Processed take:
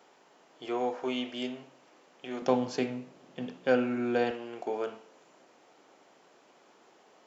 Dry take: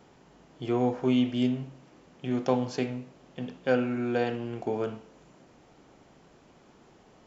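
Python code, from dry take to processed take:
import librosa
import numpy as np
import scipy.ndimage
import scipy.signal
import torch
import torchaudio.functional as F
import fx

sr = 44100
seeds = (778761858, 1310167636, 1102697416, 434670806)

y = fx.highpass(x, sr, hz=fx.steps((0.0, 470.0), (2.42, 180.0), (4.31, 420.0)), slope=12)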